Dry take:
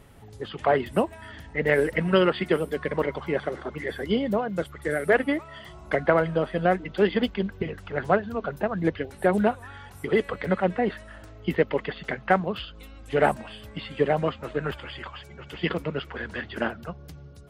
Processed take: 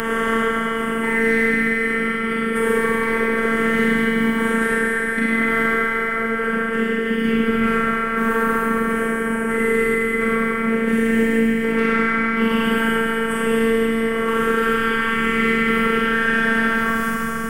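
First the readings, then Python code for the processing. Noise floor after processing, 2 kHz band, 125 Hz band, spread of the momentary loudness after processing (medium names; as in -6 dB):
-22 dBFS, +13.0 dB, -0.5 dB, 3 LU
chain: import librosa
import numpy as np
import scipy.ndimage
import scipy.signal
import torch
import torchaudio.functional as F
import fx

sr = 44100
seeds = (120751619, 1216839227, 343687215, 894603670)

y = fx.spec_swells(x, sr, rise_s=2.55)
y = fx.peak_eq(y, sr, hz=8600.0, db=8.5, octaves=0.31)
y = fx.over_compress(y, sr, threshold_db=-24.0, ratio=-0.5)
y = fx.fixed_phaser(y, sr, hz=1700.0, stages=4)
y = fx.cheby_harmonics(y, sr, harmonics=(5,), levels_db=(-24,), full_scale_db=-10.5)
y = fx.rev_schroeder(y, sr, rt60_s=2.4, comb_ms=33, drr_db=-6.5)
y = fx.robotise(y, sr, hz=226.0)
y = fx.echo_stepped(y, sr, ms=132, hz=1600.0, octaves=0.7, feedback_pct=70, wet_db=-8)
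y = fx.band_squash(y, sr, depth_pct=70)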